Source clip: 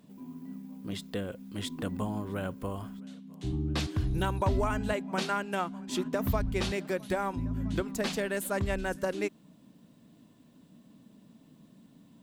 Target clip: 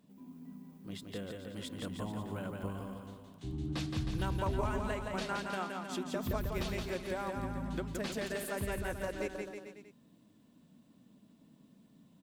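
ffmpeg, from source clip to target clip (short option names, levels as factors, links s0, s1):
-af "aecho=1:1:170|314.5|437.3|541.7|630.5:0.631|0.398|0.251|0.158|0.1,volume=0.422"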